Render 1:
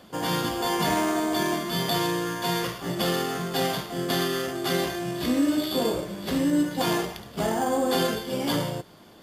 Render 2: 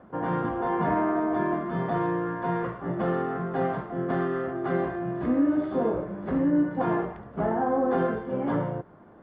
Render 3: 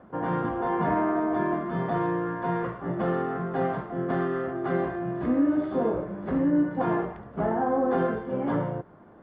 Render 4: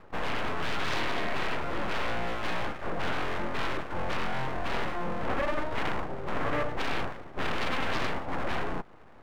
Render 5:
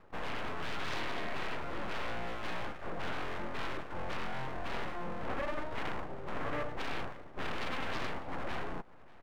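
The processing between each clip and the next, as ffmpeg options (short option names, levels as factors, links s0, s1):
-af "lowpass=f=1600:w=0.5412,lowpass=f=1600:w=1.3066"
-af anull
-af "aeval=exprs='abs(val(0))':c=same,aeval=exprs='0.211*(cos(1*acos(clip(val(0)/0.211,-1,1)))-cos(1*PI/2))+0.106*(cos(3*acos(clip(val(0)/0.211,-1,1)))-cos(3*PI/2))+0.0596*(cos(7*acos(clip(val(0)/0.211,-1,1)))-cos(7*PI/2))+0.0531*(cos(8*acos(clip(val(0)/0.211,-1,1)))-cos(8*PI/2))':c=same,volume=0.422"
-af "aecho=1:1:592:0.0708,volume=0.447"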